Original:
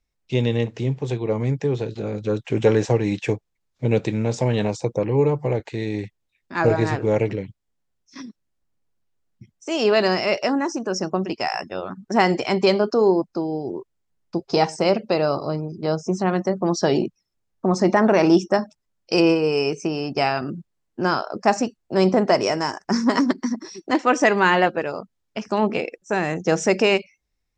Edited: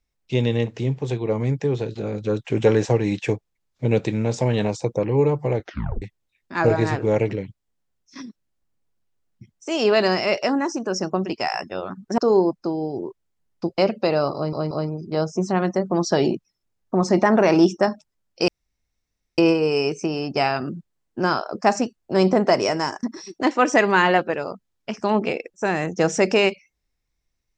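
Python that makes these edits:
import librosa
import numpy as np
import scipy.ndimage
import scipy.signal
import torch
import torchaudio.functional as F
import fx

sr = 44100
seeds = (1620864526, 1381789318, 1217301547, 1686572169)

y = fx.edit(x, sr, fx.tape_stop(start_s=5.61, length_s=0.41),
    fx.cut(start_s=12.18, length_s=0.71),
    fx.cut(start_s=14.49, length_s=0.36),
    fx.stutter(start_s=15.42, slice_s=0.18, count=3),
    fx.insert_room_tone(at_s=19.19, length_s=0.9),
    fx.cut(start_s=22.84, length_s=0.67), tone=tone)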